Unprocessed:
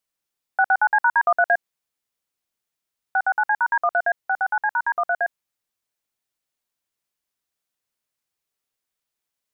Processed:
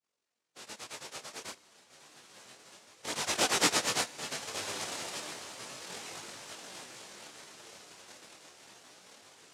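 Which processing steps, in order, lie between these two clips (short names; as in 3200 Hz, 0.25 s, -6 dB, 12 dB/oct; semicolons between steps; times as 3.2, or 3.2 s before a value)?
spectrum mirrored in octaves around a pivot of 1600 Hz; Doppler pass-by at 3.63, 11 m/s, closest 3 m; HPF 130 Hz; tilt -3 dB/oct; diffused feedback echo 1.254 s, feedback 58%, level -10 dB; noise vocoder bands 1; bell 500 Hz +6 dB 2 oct; Schroeder reverb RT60 1.8 s, combs from 26 ms, DRR 17.5 dB; detuned doubles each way 11 cents; gain +2.5 dB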